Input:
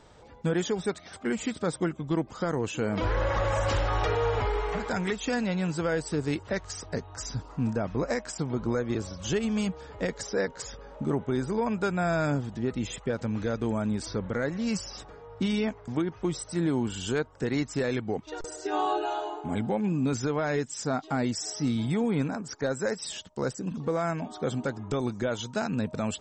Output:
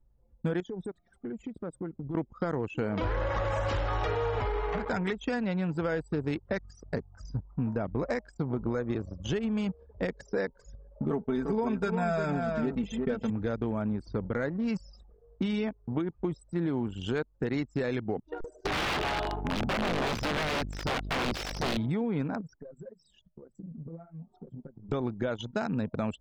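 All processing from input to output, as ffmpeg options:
ffmpeg -i in.wav -filter_complex "[0:a]asettb=1/sr,asplit=3[link_01][link_02][link_03];[link_01]atrim=end=0.604[link_04];[link_02]atrim=start=0.6:end=2.15,asetpts=PTS-STARTPTS,afade=type=in:duration=0.004:curve=qsin,afade=type=out:start_time=1.546:duration=0.004:curve=qsin,acompressor=threshold=-33dB:ratio=8:attack=3.2:release=140:knee=1:detection=peak,asoftclip=type=hard:threshold=-31dB[link_05];[link_03]atrim=start=2.146[link_06];[link_04][link_05]acrossfade=duration=0.004:curve1=hsin:curve2=qsin[link_07];[link_07][link_06]acrossfade=duration=0.004:curve1=qsin:curve2=hsin,asettb=1/sr,asplit=3[link_08][link_09][link_10];[link_08]atrim=end=11.104[link_11];[link_09]atrim=start=11.1:end=13.3,asetpts=PTS-STARTPTS,afade=type=in:duration=0.004:curve=qsin,afade=type=out:start_time=2.196:duration=0.004:curve=qsin,aecho=1:1:4.5:0.74,atrim=end_sample=97020,aecho=1:1:350:0.473,atrim=end_sample=97020[link_12];[link_10]atrim=start=13.296[link_13];[link_11][link_12]acrossfade=duration=0.004:curve1=hsin:curve2=qsin[link_14];[link_14][link_13]acrossfade=duration=0.004:curve1=qsin:curve2=hsin,asettb=1/sr,asplit=3[link_15][link_16][link_17];[link_15]atrim=end=18.654[link_18];[link_16]atrim=start=18.65:end=21.77,asetpts=PTS-STARTPTS,afade=type=in:duration=0.004:curve=qsin,afade=type=out:start_time=3.116:duration=0.004:curve=qsin,equalizer=frequency=4400:width_type=o:width=2:gain=8.5,aeval=exprs='val(0)+0.0158*(sin(2*PI*50*n/s)+sin(2*PI*2*50*n/s)/2+sin(2*PI*3*50*n/s)/3+sin(2*PI*4*50*n/s)/4+sin(2*PI*5*50*n/s)/5)':channel_layout=same,aeval=exprs='(mod(14.1*val(0)+1,2)-1)/14.1':channel_layout=same[link_19];[link_17]atrim=start=21.766[link_20];[link_18][link_19]acrossfade=duration=0.004:curve1=hsin:curve2=qsin[link_21];[link_21][link_20]acrossfade=duration=0.004:curve1=qsin:curve2=hsin,asettb=1/sr,asplit=3[link_22][link_23][link_24];[link_22]atrim=end=22.414[link_25];[link_23]atrim=start=22.41:end=24.89,asetpts=PTS-STARTPTS,afade=type=in:duration=0.004:curve=qsin,afade=type=out:start_time=2.476:duration=0.004:curve=qsin,equalizer=frequency=160:width=4.1:gain=10,acompressor=threshold=-34dB:ratio=20:attack=3.2:release=140:knee=1:detection=peak,flanger=delay=1.5:depth=6.4:regen=-21:speed=1.1:shape=sinusoidal[link_26];[link_24]atrim=start=24.886[link_27];[link_25][link_26]acrossfade=duration=0.004:curve1=hsin:curve2=qsin[link_28];[link_28][link_27]acrossfade=duration=0.004:curve1=qsin:curve2=hsin,acrossover=split=4500[link_29][link_30];[link_30]acompressor=threshold=-46dB:ratio=4:attack=1:release=60[link_31];[link_29][link_31]amix=inputs=2:normalize=0,anlmdn=6.31,acompressor=threshold=-29dB:ratio=4,volume=2dB" out.wav

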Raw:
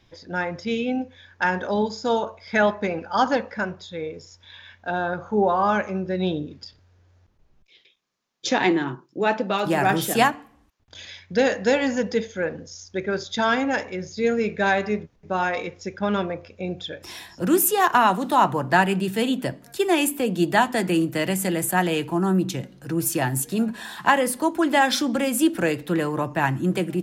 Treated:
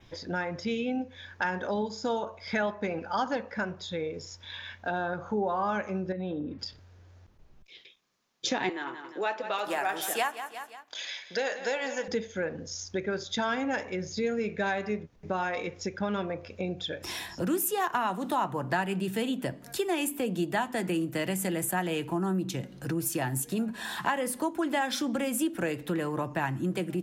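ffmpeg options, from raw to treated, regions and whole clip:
ffmpeg -i in.wav -filter_complex "[0:a]asettb=1/sr,asplit=3[link_01][link_02][link_03];[link_01]atrim=end=6.124[link_04];[link_02]atrim=start=6.12:end=6.59,asetpts=PTS-STARTPTS,afade=type=in:duration=0.004:curve=qsin,afade=type=out:start_time=0.466:duration=0.004:curve=qsin,lowpass=2000,aecho=1:1:3.8:0.45,atrim=end_sample=20727,acompressor=threshold=-28dB:ratio=6:attack=3.2:release=140:knee=1:detection=peak[link_05];[link_03]atrim=start=6.586[link_06];[link_04][link_05]acrossfade=duration=0.004:curve1=hsin:curve2=qsin[link_07];[link_07][link_06]acrossfade=duration=0.004:curve1=qsin:curve2=hsin,asettb=1/sr,asplit=3[link_08][link_09][link_10];[link_08]atrim=end=8.694[link_11];[link_09]atrim=start=8.69:end=12.08,asetpts=PTS-STARTPTS,afade=type=in:duration=0.004:curve=qsin,afade=type=out:start_time=3.386:duration=0.004:curve=qsin,highpass=560,aecho=1:1:176|352|528:0.188|0.0697|0.0258,atrim=end_sample=149499[link_12];[link_10]atrim=start=12.076[link_13];[link_11][link_12]acrossfade=duration=0.004:curve1=hsin:curve2=qsin[link_14];[link_14][link_13]acrossfade=duration=0.004:curve1=qsin:curve2=hsin,adynamicequalizer=threshold=0.00355:dfrequency=4500:dqfactor=2.9:tfrequency=4500:tqfactor=2.9:attack=5:release=100:ratio=0.375:range=2:mode=cutabove:tftype=bell,acompressor=threshold=-36dB:ratio=2.5,volume=3.5dB" out.wav

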